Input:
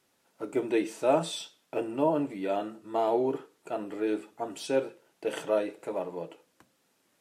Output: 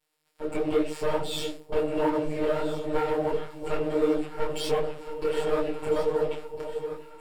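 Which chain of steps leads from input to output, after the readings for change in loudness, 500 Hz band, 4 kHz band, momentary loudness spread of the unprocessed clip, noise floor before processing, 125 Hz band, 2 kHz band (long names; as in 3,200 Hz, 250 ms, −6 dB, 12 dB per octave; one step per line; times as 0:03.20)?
+2.0 dB, +3.5 dB, +4.5 dB, 12 LU, −72 dBFS, +6.0 dB, +3.5 dB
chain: lower of the sound and its delayed copy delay 2.2 ms
phases set to zero 153 Hz
parametric band 1,400 Hz −3 dB 1.1 octaves
downward compressor 6 to 1, threshold −37 dBFS, peak gain reduction 15 dB
high-shelf EQ 6,700 Hz −10.5 dB
mains-hum notches 60/120/180/240/300/360/420/480 Hz
leveller curve on the samples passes 3
automatic gain control gain up to 11.5 dB
notch filter 6,200 Hz, Q 5.3
on a send: delay that swaps between a low-pass and a high-pass 677 ms, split 860 Hz, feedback 65%, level −10 dB
on the sum: micro pitch shift up and down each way 50 cents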